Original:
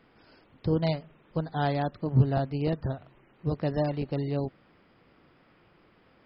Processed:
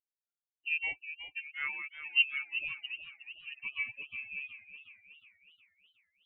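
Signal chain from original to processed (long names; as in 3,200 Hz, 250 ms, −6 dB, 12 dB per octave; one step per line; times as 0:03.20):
spectral dynamics exaggerated over time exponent 3
voice inversion scrambler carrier 2,900 Hz
feedback echo with a swinging delay time 365 ms, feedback 52%, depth 90 cents, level −11 dB
level −3.5 dB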